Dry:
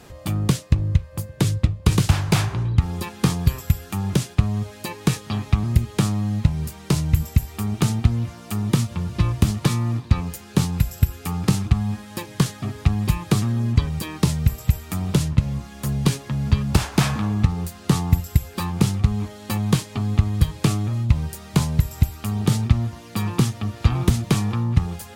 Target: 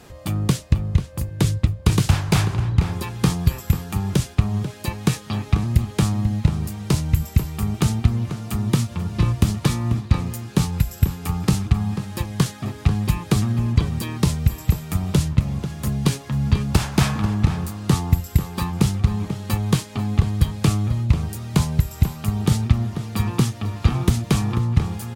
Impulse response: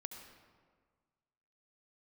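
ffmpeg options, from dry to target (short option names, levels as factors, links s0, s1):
-filter_complex "[0:a]asplit=2[s0][s1];[s1]adelay=489.8,volume=0.355,highshelf=f=4000:g=-11[s2];[s0][s2]amix=inputs=2:normalize=0"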